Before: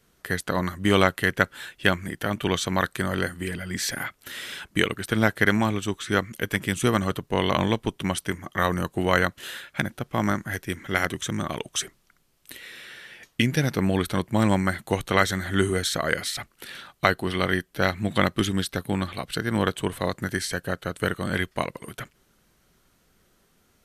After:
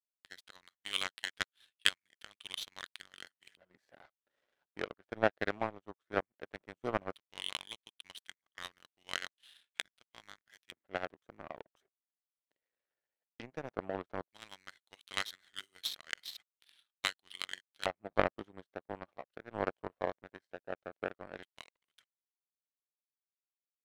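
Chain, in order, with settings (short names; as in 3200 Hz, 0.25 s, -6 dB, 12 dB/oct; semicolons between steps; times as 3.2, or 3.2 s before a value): LFO band-pass square 0.14 Hz 630–3500 Hz; power-law curve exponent 2; gain +6.5 dB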